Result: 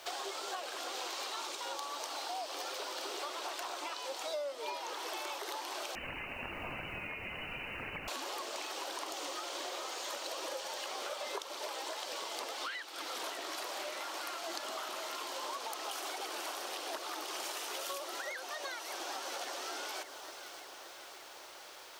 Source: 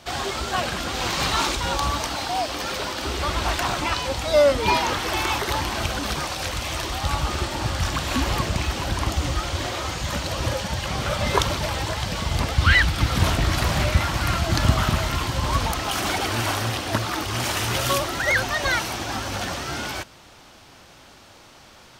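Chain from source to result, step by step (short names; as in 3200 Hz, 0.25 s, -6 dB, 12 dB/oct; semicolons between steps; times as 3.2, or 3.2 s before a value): steep high-pass 350 Hz 36 dB/oct; low shelf 470 Hz -2.5 dB; echo with dull and thin repeats by turns 0.287 s, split 1300 Hz, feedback 73%, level -14 dB; 5.95–8.08 inverted band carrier 3300 Hz; requantised 10-bit, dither triangular; compressor 12:1, threshold -33 dBFS, peak gain reduction 19.5 dB; dynamic EQ 1900 Hz, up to -5 dB, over -51 dBFS, Q 1.1; gain -2.5 dB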